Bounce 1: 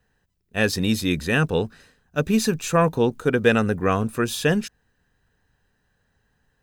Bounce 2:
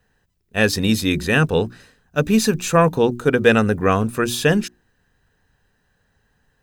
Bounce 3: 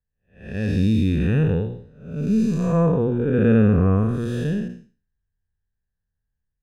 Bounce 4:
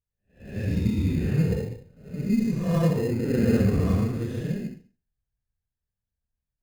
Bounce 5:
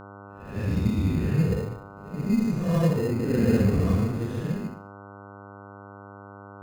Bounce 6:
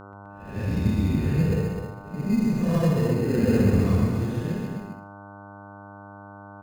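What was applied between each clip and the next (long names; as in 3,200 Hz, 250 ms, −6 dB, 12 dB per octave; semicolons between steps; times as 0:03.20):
mains-hum notches 60/120/180/240/300/360 Hz; level +4 dB
spectrum smeared in time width 325 ms; low-shelf EQ 110 Hz +9.5 dB; every bin expanded away from the loudest bin 1.5 to 1
random phases in long frames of 50 ms; in parallel at −6 dB: sample-rate reduction 2,300 Hz, jitter 0%; on the sum: level −8.5 dB
hum with harmonics 100 Hz, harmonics 15, −44 dBFS −2 dB per octave
loudspeakers that aren't time-aligned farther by 45 metres −7 dB, 88 metres −7 dB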